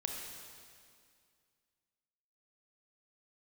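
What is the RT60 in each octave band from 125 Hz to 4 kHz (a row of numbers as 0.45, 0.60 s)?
2.4, 2.4, 2.2, 2.2, 2.1, 2.1 s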